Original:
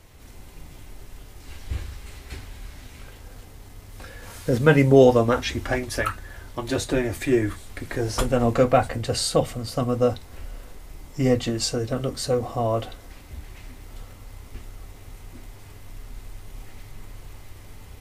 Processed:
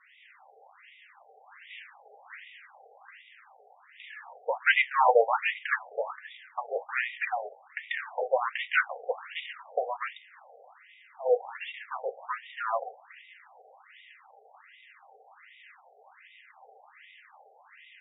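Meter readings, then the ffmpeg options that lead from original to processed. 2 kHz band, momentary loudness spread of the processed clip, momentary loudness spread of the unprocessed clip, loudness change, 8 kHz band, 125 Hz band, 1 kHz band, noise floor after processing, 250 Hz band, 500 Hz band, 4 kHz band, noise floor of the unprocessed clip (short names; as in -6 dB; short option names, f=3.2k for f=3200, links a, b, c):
+2.0 dB, 23 LU, 23 LU, -7.0 dB, under -40 dB, under -40 dB, -0.5 dB, -59 dBFS, under -40 dB, -9.5 dB, -8.5 dB, -45 dBFS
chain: -af "highpass=f=220:w=0.5412,highpass=f=220:w=1.3066,equalizer=f=280:t=q:w=4:g=-4,equalizer=f=440:t=q:w=4:g=4,equalizer=f=800:t=q:w=4:g=9,equalizer=f=1.9k:t=q:w=4:g=9,equalizer=f=2.7k:t=q:w=4:g=8,equalizer=f=4.9k:t=q:w=4:g=6,lowpass=f=5.3k:w=0.5412,lowpass=f=5.3k:w=1.3066,aeval=exprs='max(val(0),0)':c=same,afftfilt=real='re*between(b*sr/1024,570*pow(2700/570,0.5+0.5*sin(2*PI*1.3*pts/sr))/1.41,570*pow(2700/570,0.5+0.5*sin(2*PI*1.3*pts/sr))*1.41)':imag='im*between(b*sr/1024,570*pow(2700/570,0.5+0.5*sin(2*PI*1.3*pts/sr))/1.41,570*pow(2700/570,0.5+0.5*sin(2*PI*1.3*pts/sr))*1.41)':win_size=1024:overlap=0.75,volume=2.5dB"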